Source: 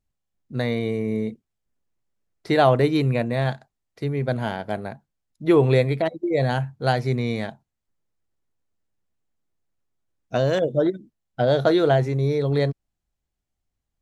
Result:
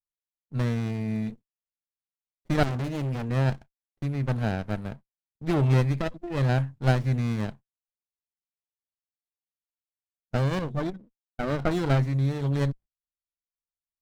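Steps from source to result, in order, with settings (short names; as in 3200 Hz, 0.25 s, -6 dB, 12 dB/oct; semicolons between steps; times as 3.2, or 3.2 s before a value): gate -41 dBFS, range -27 dB; bell 430 Hz -12.5 dB 1.1 oct; 2.63–3.29 hard clip -26.5 dBFS, distortion -12 dB; 10.93–11.71 BPF 180–2300 Hz; running maximum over 33 samples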